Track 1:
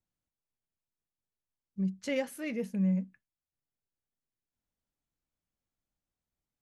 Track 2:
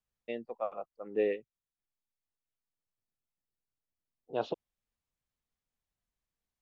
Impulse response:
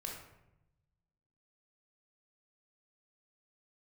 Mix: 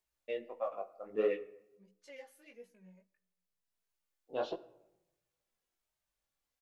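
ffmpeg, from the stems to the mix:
-filter_complex "[0:a]highpass=440,acompressor=mode=upward:threshold=0.00126:ratio=2.5,asplit=2[s0][s1];[s1]adelay=2.8,afreqshift=-1[s2];[s0][s2]amix=inputs=2:normalize=1,volume=0.266,asplit=2[s3][s4];[s4]volume=0.178[s5];[1:a]aphaser=in_gain=1:out_gain=1:delay=3.8:decay=0.39:speed=0.8:type=triangular,asoftclip=type=tanh:threshold=0.126,volume=1,asplit=2[s6][s7];[s7]volume=0.335[s8];[2:a]atrim=start_sample=2205[s9];[s5][s8]amix=inputs=2:normalize=0[s10];[s10][s9]afir=irnorm=-1:irlink=0[s11];[s3][s6][s11]amix=inputs=3:normalize=0,lowshelf=f=280:g=-6.5,flanger=delay=16:depth=7.3:speed=1.5"

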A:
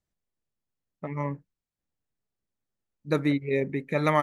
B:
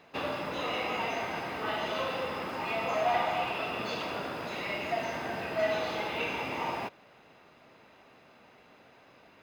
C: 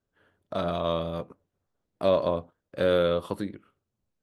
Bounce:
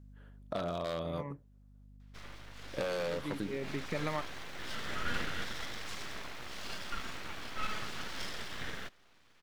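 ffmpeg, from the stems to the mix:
-filter_complex "[0:a]aeval=exprs='val(0)+0.002*(sin(2*PI*50*n/s)+sin(2*PI*2*50*n/s)/2+sin(2*PI*3*50*n/s)/3+sin(2*PI*4*50*n/s)/4+sin(2*PI*5*50*n/s)/5)':c=same,volume=1.19[s0];[1:a]highpass=460,dynaudnorm=f=430:g=9:m=2.99,aeval=exprs='abs(val(0))':c=same,adelay=2000,volume=0.224[s1];[2:a]aeval=exprs='0.1*(abs(mod(val(0)/0.1+3,4)-2)-1)':c=same,volume=1,asplit=3[s2][s3][s4];[s2]atrim=end=1.97,asetpts=PTS-STARTPTS,afade=t=out:st=1.966:d=0.004:c=hsin[s5];[s3]atrim=start=1.97:end=2.59,asetpts=PTS-STARTPTS,volume=0[s6];[s4]atrim=start=2.59,asetpts=PTS-STARTPTS,afade=t=in:d=0.004:c=hsin[s7];[s5][s6][s7]concat=n=3:v=0:a=1,asplit=2[s8][s9];[s9]apad=whole_len=186130[s10];[s0][s10]sidechaincompress=threshold=0.0112:ratio=4:attack=16:release=991[s11];[s11][s8]amix=inputs=2:normalize=0,acompressor=threshold=0.0224:ratio=6,volume=1[s12];[s1][s12]amix=inputs=2:normalize=0"

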